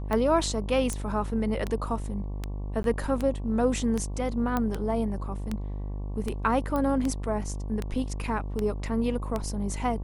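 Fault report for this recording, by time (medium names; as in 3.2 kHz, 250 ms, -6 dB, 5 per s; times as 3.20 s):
buzz 50 Hz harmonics 23 -33 dBFS
tick 78 rpm -16 dBFS
0.93 s: pop -19 dBFS
2.83–2.84 s: dropout 12 ms
4.57 s: pop -14 dBFS
6.76 s: pop -18 dBFS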